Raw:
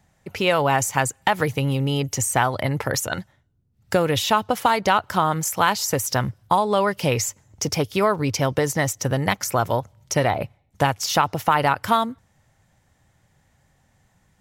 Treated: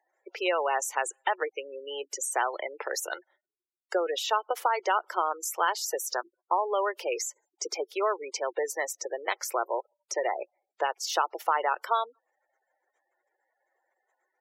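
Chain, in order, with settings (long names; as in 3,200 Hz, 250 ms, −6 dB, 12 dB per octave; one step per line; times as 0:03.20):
gate on every frequency bin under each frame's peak −20 dB strong
Chebyshev high-pass filter 350 Hz, order 6
level −6.5 dB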